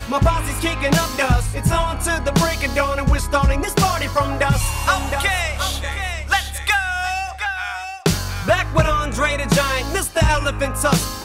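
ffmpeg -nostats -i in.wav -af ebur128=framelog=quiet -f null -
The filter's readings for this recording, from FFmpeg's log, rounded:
Integrated loudness:
  I:         -19.4 LUFS
  Threshold: -29.4 LUFS
Loudness range:
  LRA:         2.1 LU
  Threshold: -39.6 LUFS
  LRA low:   -21.0 LUFS
  LRA high:  -18.8 LUFS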